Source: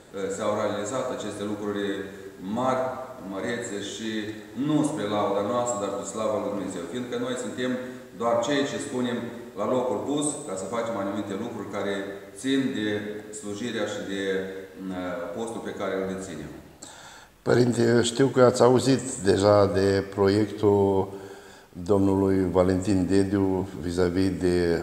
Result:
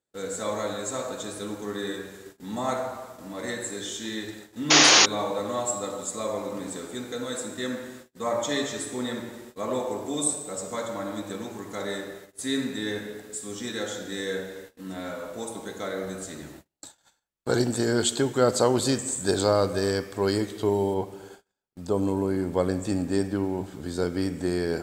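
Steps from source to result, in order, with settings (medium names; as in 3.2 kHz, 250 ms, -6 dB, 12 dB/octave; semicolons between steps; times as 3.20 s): gate -41 dBFS, range -36 dB; treble shelf 3.3 kHz +9.5 dB, from 20.94 s +4 dB; 4.70–5.06 s: painted sound noise 270–7000 Hz -12 dBFS; trim -4 dB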